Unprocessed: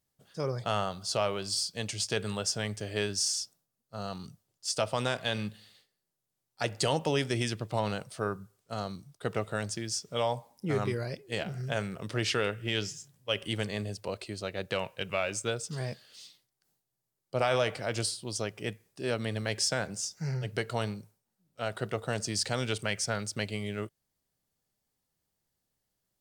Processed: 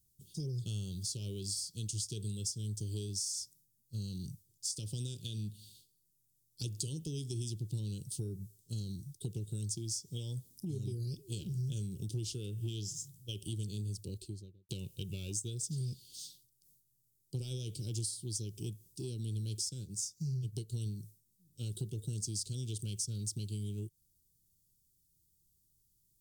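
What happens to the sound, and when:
2.45–3.08 s: peaking EQ 2.4 kHz -7 dB 0.47 oct
13.89–14.69 s: studio fade out
19.69–20.86 s: upward expansion, over -49 dBFS
whole clip: elliptic band-stop 350–3600 Hz, stop band 40 dB; compression 6:1, threshold -42 dBFS; graphic EQ 250/500/2000/4000 Hz -11/-6/-8/-10 dB; trim +11 dB

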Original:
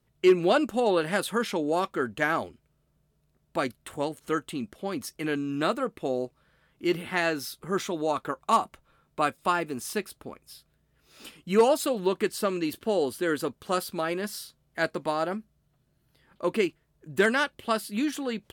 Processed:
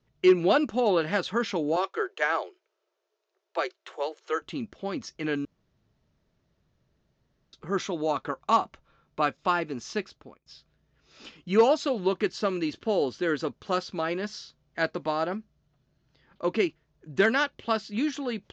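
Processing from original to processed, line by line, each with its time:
1.76–4.42 s: steep high-pass 340 Hz 96 dB/octave
5.45–7.53 s: room tone
10.04–10.46 s: fade out, to -22 dB
whole clip: steep low-pass 6.7 kHz 72 dB/octave

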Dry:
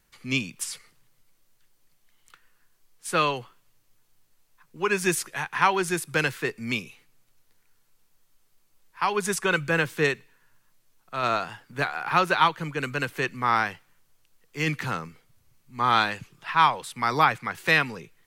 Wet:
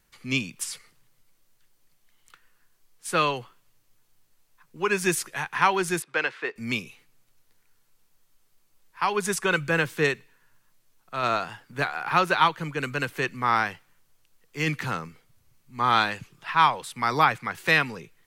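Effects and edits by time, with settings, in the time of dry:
6.02–6.56 s: band-pass 450–3100 Hz

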